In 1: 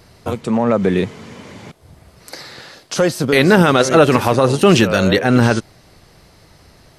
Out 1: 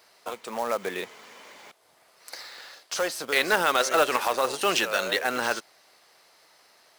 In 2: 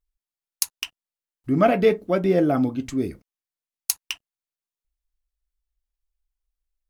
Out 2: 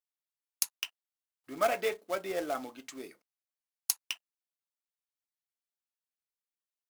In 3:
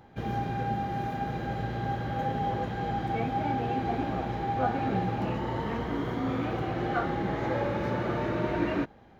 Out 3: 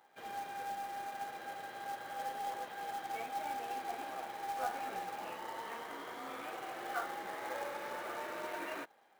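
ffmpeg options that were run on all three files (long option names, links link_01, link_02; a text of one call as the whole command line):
ffmpeg -i in.wav -af "highpass=680,acrusher=bits=3:mode=log:mix=0:aa=0.000001,volume=-6.5dB" out.wav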